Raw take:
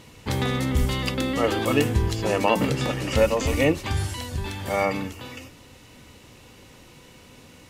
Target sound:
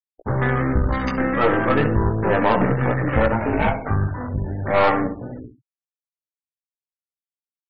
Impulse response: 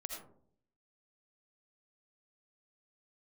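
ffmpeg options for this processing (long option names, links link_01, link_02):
-filter_complex "[0:a]acrossover=split=410[link_01][link_02];[link_01]acrusher=bits=6:mix=0:aa=0.000001[link_03];[link_03][link_02]amix=inputs=2:normalize=0,afwtdn=0.0251,highshelf=frequency=2200:width_type=q:width=3:gain=-8,asettb=1/sr,asplit=3[link_04][link_05][link_06];[link_04]atrim=end=1.224[link_07];[link_05]atrim=start=1.22:end=2.07,asetpts=PTS-STARTPTS,afade=type=in:duration=0.004:curve=qsin,afade=type=out:start_time=0.846:duration=0.004:curve=qsin,aecho=1:1:6.1:0.39,atrim=end_sample=37485[link_08];[link_06]atrim=start=2.066[link_09];[link_07][link_08]acrossfade=duration=0.004:curve1=hsin:curve2=qsin[link_10];[link_10][link_09]acrossfade=duration=0.004:curve1=qsin:curve2=hsin,asplit=3[link_11][link_12][link_13];[link_11]afade=type=out:start_time=4.74:duration=0.02[link_14];[link_12]equalizer=frequency=840:width=0.73:gain=7,afade=type=in:start_time=4.74:duration=0.02,afade=type=out:start_time=5.14:duration=0.02[link_15];[link_13]afade=type=in:start_time=5.14:duration=0.02[link_16];[link_14][link_15][link_16]amix=inputs=3:normalize=0,asplit=2[link_17][link_18];[link_18]acompressor=threshold=-34dB:ratio=5,volume=0dB[link_19];[link_17][link_19]amix=inputs=2:normalize=0,asettb=1/sr,asplit=3[link_20][link_21][link_22];[link_20]atrim=end=3.324[link_23];[link_21]atrim=start=3.32:end=3.89,asetpts=PTS-STARTPTS,afade=type=in:duration=0.004:curve=qsin,afade=type=out:start_time=0.566:duration=0.004:curve=qsin,aeval=exprs='val(0)*sin(2*PI*350*n/s)':channel_layout=same[link_24];[link_22]atrim=start=3.886[link_25];[link_23][link_24]acrossfade=duration=0.004:curve1=hsin:curve2=qsin[link_26];[link_26][link_25]acrossfade=duration=0.004:curve1=qsin:curve2=hsin,flanger=delay=16.5:depth=3.2:speed=0.36,aecho=1:1:68|136|204|272:0.282|0.116|0.0474|0.0194,aeval=exprs='(tanh(8.91*val(0)+0.6)-tanh(0.6))/8.91':channel_layout=same,afftfilt=real='re*gte(hypot(re,im),0.00562)':imag='im*gte(hypot(re,im),0.00562)':win_size=1024:overlap=0.75,volume=8.5dB"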